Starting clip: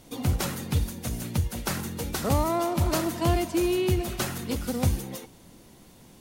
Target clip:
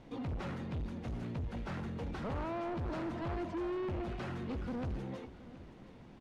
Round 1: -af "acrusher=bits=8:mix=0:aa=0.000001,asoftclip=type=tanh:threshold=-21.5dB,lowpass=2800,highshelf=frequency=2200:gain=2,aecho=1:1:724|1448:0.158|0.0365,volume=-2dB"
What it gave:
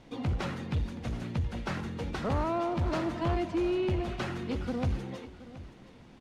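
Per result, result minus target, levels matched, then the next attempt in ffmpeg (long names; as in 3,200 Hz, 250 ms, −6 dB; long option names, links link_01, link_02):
soft clipping: distortion −8 dB; 4,000 Hz band +3.0 dB
-af "acrusher=bits=8:mix=0:aa=0.000001,asoftclip=type=tanh:threshold=-33dB,lowpass=2800,highshelf=frequency=2200:gain=2,aecho=1:1:724|1448:0.158|0.0365,volume=-2dB"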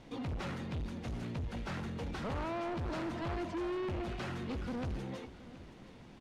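4,000 Hz band +5.0 dB
-af "acrusher=bits=8:mix=0:aa=0.000001,asoftclip=type=tanh:threshold=-33dB,lowpass=2800,highshelf=frequency=2200:gain=-5.5,aecho=1:1:724|1448:0.158|0.0365,volume=-2dB"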